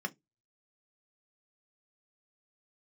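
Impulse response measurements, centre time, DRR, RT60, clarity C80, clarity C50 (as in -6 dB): 3 ms, 4.5 dB, 0.15 s, 38.5 dB, 27.0 dB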